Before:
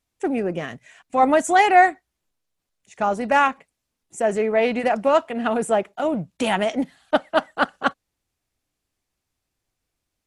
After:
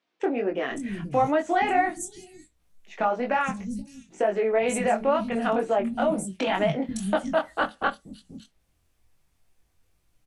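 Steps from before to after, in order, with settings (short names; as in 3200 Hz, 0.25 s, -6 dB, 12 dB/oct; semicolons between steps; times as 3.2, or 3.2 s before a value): low shelf 120 Hz +10 dB; notch 7100 Hz, Q 23; in parallel at +1 dB: limiter -11 dBFS, peak gain reduction 7 dB; on the sum: compressor 4:1, threshold -22 dBFS, peak gain reduction 14 dB; chorus 2.1 Hz, delay 19 ms, depth 4.2 ms; three bands offset in time mids, lows, highs 0.48/0.56 s, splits 240/4800 Hz; on a send at -12.5 dB: reverb RT60 0.20 s, pre-delay 4 ms; on the sum: gain +2.5 dB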